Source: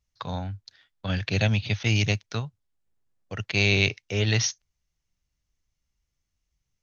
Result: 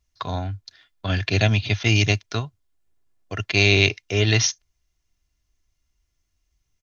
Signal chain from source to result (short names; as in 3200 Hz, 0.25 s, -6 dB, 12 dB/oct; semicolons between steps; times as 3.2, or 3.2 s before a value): comb 2.9 ms, depth 45%; gain +4.5 dB